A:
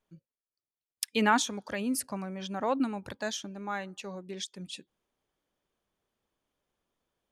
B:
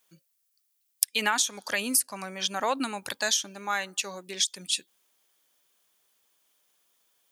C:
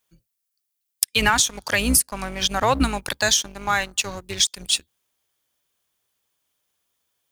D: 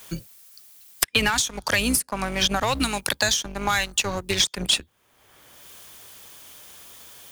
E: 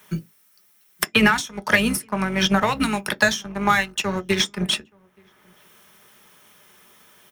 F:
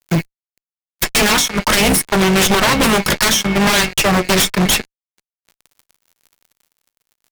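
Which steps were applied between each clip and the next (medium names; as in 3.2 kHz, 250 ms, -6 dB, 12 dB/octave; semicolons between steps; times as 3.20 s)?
tilt EQ +4.5 dB/octave; compression 10:1, threshold -27 dBFS, peak gain reduction 14 dB; trim +6 dB
octave divider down 2 oct, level -2 dB; waveshaping leveller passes 2; tone controls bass +4 dB, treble -1 dB
saturation -9.5 dBFS, distortion -19 dB; three bands compressed up and down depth 100%; trim -1 dB
echo from a far wall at 150 m, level -26 dB; reverberation RT60 0.15 s, pre-delay 3 ms, DRR 7.5 dB; upward expansion 1.5:1, over -28 dBFS; trim -1 dB
whistle 2.2 kHz -44 dBFS; Chebyshev shaper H 3 -30 dB, 6 -18 dB, 7 -14 dB, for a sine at -1.5 dBFS; fuzz box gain 40 dB, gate -45 dBFS; trim +2 dB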